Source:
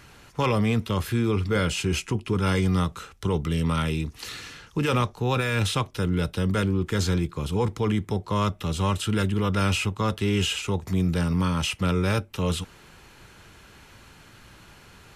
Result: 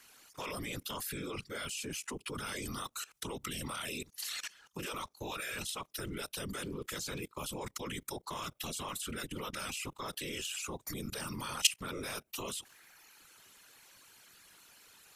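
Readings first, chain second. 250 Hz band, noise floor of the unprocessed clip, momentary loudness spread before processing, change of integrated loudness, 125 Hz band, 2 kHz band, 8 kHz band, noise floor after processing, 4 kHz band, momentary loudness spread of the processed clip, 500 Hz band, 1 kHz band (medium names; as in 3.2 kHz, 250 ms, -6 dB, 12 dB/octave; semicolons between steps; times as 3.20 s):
-18.5 dB, -51 dBFS, 5 LU, -13.0 dB, -23.5 dB, -10.5 dB, -1.5 dB, -70 dBFS, -7.0 dB, 19 LU, -16.0 dB, -12.5 dB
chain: RIAA curve recording; reverb removal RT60 1.1 s; whisper effect; level held to a coarse grid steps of 20 dB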